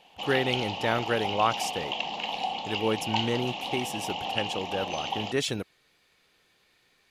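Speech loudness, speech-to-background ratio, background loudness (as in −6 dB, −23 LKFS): −30.5 LKFS, 1.5 dB, −32.0 LKFS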